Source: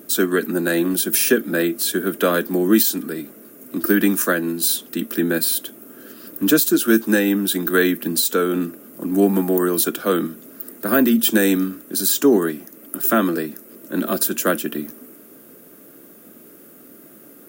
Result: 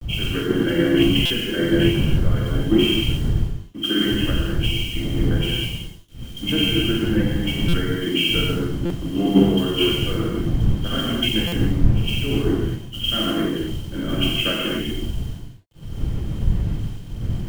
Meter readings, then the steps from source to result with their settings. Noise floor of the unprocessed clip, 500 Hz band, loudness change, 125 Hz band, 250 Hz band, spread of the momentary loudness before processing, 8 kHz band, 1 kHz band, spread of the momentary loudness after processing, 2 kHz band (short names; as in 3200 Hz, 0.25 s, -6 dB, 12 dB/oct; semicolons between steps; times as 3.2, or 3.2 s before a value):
-45 dBFS, -4.5 dB, -2.5 dB, +11.0 dB, -1.5 dB, 15 LU, -15.5 dB, -6.5 dB, 11 LU, -3.5 dB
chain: nonlinear frequency compression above 1900 Hz 4:1; wind noise 200 Hz -20 dBFS; gate -30 dBFS, range -21 dB; low shelf 220 Hz +10 dB; notches 50/100/150/200/250/300/350/400 Hz; compressor 10:1, threshold -16 dBFS, peak gain reduction 20 dB; requantised 6-bit, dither none; non-linear reverb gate 0.3 s flat, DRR -4.5 dB; stuck buffer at 1.25/7.68/8.85/11.47, samples 256, times 8; three-band expander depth 100%; gain -6 dB